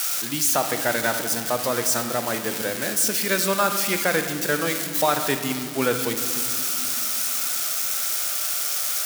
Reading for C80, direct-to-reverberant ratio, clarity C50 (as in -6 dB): 9.5 dB, 7.0 dB, 8.0 dB